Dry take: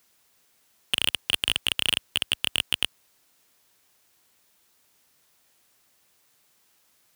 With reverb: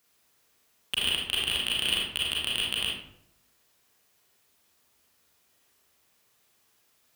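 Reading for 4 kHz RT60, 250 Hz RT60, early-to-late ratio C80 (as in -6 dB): 0.45 s, 0.85 s, 5.0 dB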